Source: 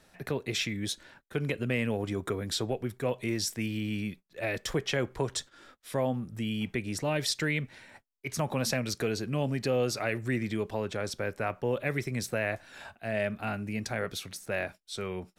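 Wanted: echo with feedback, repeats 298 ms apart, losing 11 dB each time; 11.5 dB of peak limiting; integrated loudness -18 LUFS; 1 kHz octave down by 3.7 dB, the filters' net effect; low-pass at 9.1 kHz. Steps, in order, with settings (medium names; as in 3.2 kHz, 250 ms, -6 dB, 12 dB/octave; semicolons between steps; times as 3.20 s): low-pass 9.1 kHz; peaking EQ 1 kHz -5.5 dB; peak limiter -27.5 dBFS; feedback delay 298 ms, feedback 28%, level -11 dB; trim +19.5 dB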